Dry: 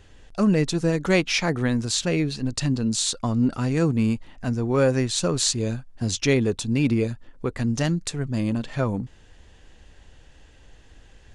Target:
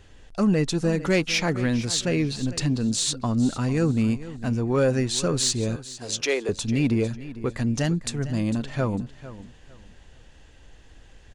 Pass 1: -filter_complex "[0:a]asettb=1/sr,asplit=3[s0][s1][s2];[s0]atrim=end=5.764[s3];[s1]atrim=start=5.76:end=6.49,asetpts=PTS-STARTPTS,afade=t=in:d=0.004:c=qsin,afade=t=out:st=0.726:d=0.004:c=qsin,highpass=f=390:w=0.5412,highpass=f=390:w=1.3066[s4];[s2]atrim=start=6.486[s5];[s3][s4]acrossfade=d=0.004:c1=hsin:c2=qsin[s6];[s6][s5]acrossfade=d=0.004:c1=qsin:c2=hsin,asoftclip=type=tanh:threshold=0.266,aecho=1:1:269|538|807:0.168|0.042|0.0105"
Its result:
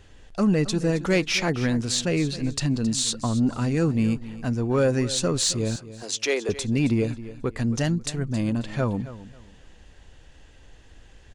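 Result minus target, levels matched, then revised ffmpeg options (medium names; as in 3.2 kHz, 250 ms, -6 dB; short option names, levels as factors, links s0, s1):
echo 182 ms early
-filter_complex "[0:a]asettb=1/sr,asplit=3[s0][s1][s2];[s0]atrim=end=5.764[s3];[s1]atrim=start=5.76:end=6.49,asetpts=PTS-STARTPTS,afade=t=in:d=0.004:c=qsin,afade=t=out:st=0.726:d=0.004:c=qsin,highpass=f=390:w=0.5412,highpass=f=390:w=1.3066[s4];[s2]atrim=start=6.486[s5];[s3][s4]acrossfade=d=0.004:c1=hsin:c2=qsin[s6];[s6][s5]acrossfade=d=0.004:c1=qsin:c2=hsin,asoftclip=type=tanh:threshold=0.266,aecho=1:1:451|902|1353:0.168|0.042|0.0105"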